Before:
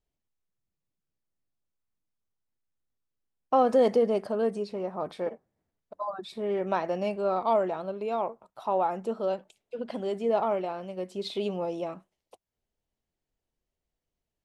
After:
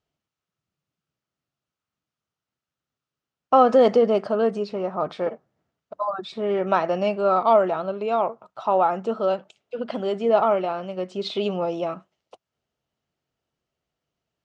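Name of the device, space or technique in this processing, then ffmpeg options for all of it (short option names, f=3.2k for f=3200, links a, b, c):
car door speaker: -af "highpass=88,equalizer=f=140:t=q:w=4:g=5,equalizer=f=660:t=q:w=4:g=3,equalizer=f=1.3k:t=q:w=4:g=8,equalizer=f=2.9k:t=q:w=4:g=4,lowpass=f=6.8k:w=0.5412,lowpass=f=6.8k:w=1.3066,volume=5dB"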